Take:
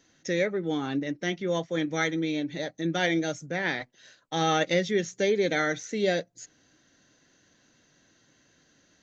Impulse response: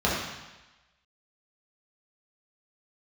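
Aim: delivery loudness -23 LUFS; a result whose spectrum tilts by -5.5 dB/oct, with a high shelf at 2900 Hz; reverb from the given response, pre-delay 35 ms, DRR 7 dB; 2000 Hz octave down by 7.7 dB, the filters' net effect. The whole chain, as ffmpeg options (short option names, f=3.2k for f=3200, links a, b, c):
-filter_complex "[0:a]equalizer=f=2k:t=o:g=-7,highshelf=f=2.9k:g=-6.5,asplit=2[a][b];[1:a]atrim=start_sample=2205,adelay=35[c];[b][c]afir=irnorm=-1:irlink=0,volume=-22dB[d];[a][d]amix=inputs=2:normalize=0,volume=5.5dB"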